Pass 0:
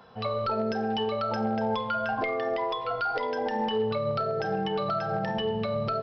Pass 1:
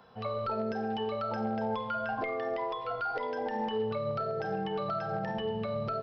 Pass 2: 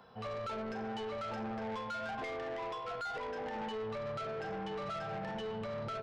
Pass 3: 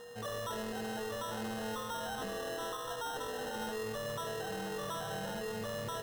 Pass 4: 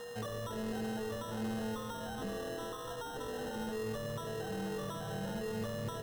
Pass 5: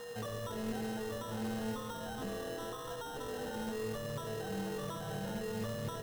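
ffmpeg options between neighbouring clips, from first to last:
ffmpeg -i in.wav -filter_complex "[0:a]acrossover=split=2700[link_01][link_02];[link_02]acompressor=threshold=-47dB:ratio=4:attack=1:release=60[link_03];[link_01][link_03]amix=inputs=2:normalize=0,volume=-4.5dB" out.wav
ffmpeg -i in.wav -af "asoftclip=type=tanh:threshold=-35.5dB,volume=-1dB" out.wav
ffmpeg -i in.wav -af "aeval=exprs='val(0)+0.00447*sin(2*PI*480*n/s)':channel_layout=same,acrusher=samples=19:mix=1:aa=0.000001" out.wav
ffmpeg -i in.wav -filter_complex "[0:a]acrossover=split=390[link_01][link_02];[link_02]acompressor=threshold=-46dB:ratio=6[link_03];[link_01][link_03]amix=inputs=2:normalize=0,volume=4.5dB" out.wav
ffmpeg -i in.wav -af "flanger=delay=5.8:depth=4.6:regen=86:speed=1:shape=sinusoidal,acrusher=bits=4:mode=log:mix=0:aa=0.000001,volume=4dB" out.wav

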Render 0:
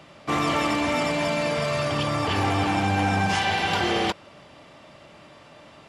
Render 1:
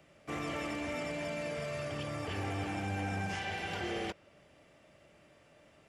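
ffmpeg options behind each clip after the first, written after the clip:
ffmpeg -i in.wav -filter_complex "[0:a]equalizer=frequency=125:width_type=o:width=1:gain=-4,equalizer=frequency=250:width_type=o:width=1:gain=-5,equalizer=frequency=1000:width_type=o:width=1:gain=-11,equalizer=frequency=4000:width_type=o:width=1:gain=-10,acrossover=split=550|6400[link_01][link_02][link_03];[link_03]alimiter=level_in=20.5dB:limit=-24dB:level=0:latency=1:release=388,volume=-20.5dB[link_04];[link_01][link_02][link_04]amix=inputs=3:normalize=0,volume=-8dB" out.wav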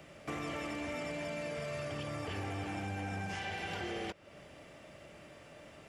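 ffmpeg -i in.wav -af "acompressor=threshold=-48dB:ratio=3,volume=8dB" out.wav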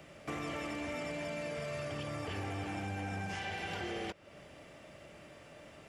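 ffmpeg -i in.wav -af anull out.wav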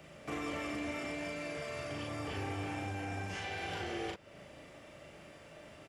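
ffmpeg -i in.wav -filter_complex "[0:a]asplit=2[link_01][link_02];[link_02]adelay=38,volume=-2.5dB[link_03];[link_01][link_03]amix=inputs=2:normalize=0,volume=-1.5dB" out.wav

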